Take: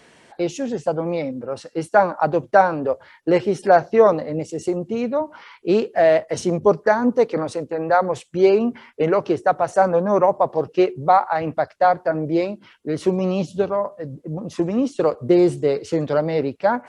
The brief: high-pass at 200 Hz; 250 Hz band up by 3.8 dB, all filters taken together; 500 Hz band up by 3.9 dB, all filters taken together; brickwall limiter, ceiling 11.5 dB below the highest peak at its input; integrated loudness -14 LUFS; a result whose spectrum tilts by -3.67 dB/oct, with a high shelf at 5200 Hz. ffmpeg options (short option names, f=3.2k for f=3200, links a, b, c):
-af "highpass=200,equalizer=f=250:t=o:g=5.5,equalizer=f=500:t=o:g=3.5,highshelf=f=5.2k:g=4.5,volume=6.5dB,alimiter=limit=-3.5dB:level=0:latency=1"